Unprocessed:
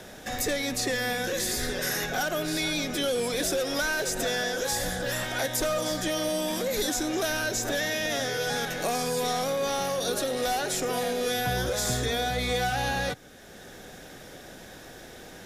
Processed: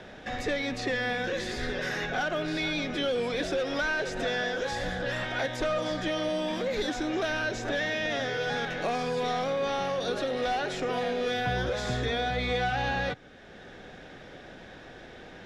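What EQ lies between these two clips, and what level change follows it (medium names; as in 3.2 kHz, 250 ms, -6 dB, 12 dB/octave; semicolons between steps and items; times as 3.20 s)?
Chebyshev low-pass 2.9 kHz, order 2; 0.0 dB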